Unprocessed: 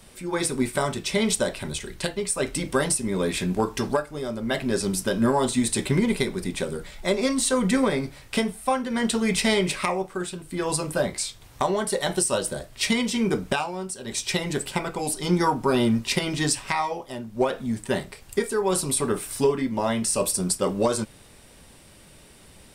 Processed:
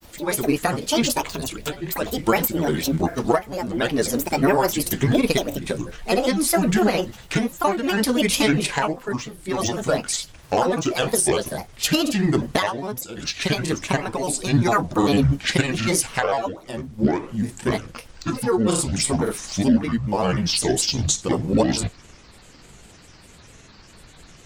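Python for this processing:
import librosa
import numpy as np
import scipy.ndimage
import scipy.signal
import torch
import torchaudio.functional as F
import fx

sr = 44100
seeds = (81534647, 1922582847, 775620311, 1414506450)

y = fx.speed_glide(x, sr, from_pct=123, to_pct=63)
y = fx.granulator(y, sr, seeds[0], grain_ms=100.0, per_s=20.0, spray_ms=31.0, spread_st=7)
y = y * librosa.db_to_amplitude(4.5)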